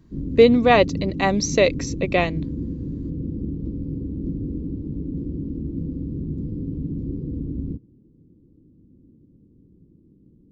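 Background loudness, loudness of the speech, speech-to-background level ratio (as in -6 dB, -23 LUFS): -30.0 LUFS, -19.0 LUFS, 11.0 dB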